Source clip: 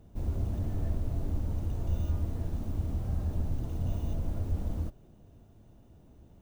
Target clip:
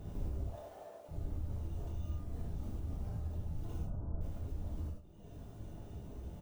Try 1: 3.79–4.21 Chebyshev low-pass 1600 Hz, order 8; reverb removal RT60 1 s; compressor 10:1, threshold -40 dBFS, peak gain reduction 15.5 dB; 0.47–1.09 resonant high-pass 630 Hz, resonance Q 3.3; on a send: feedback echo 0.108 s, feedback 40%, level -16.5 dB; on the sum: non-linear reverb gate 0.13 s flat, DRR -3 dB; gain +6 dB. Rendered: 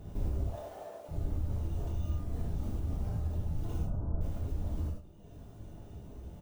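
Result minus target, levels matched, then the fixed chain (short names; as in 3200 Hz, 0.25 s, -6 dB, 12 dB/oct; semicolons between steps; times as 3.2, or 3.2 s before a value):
compressor: peak gain reduction -6 dB
3.79–4.21 Chebyshev low-pass 1600 Hz, order 8; reverb removal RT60 1 s; compressor 10:1, threshold -46.5 dBFS, peak gain reduction 21.5 dB; 0.47–1.09 resonant high-pass 630 Hz, resonance Q 3.3; on a send: feedback echo 0.108 s, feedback 40%, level -16.5 dB; on the sum: non-linear reverb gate 0.13 s flat, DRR -3 dB; gain +6 dB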